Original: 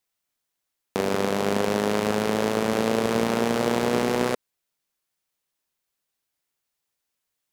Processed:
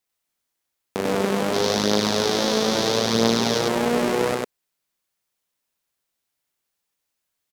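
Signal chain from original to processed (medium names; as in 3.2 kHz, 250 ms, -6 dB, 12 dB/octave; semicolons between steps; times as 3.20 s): 1.53–3.59 s: high-order bell 4.6 kHz +11.5 dB 1.1 oct; loudspeakers at several distances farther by 21 m -11 dB, 33 m -1 dB; trim -1 dB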